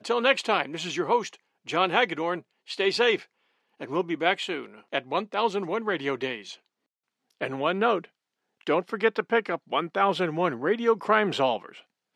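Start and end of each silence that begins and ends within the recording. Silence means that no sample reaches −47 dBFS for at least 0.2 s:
0:01.36–0:01.66
0:02.41–0:02.67
0:03.25–0:03.80
0:06.56–0:07.41
0:08.06–0:08.61

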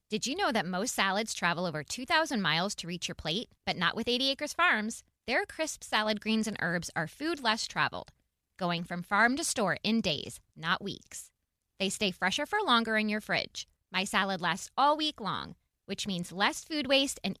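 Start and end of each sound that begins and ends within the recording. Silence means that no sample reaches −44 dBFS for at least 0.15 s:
0:03.67–0:05.00
0:05.28–0:08.08
0:08.59–0:10.37
0:10.58–0:11.25
0:11.80–0:13.63
0:13.93–0:15.52

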